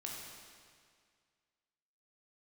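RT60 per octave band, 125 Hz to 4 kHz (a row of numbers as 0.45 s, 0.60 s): 2.0 s, 2.0 s, 2.0 s, 2.0 s, 2.0 s, 1.8 s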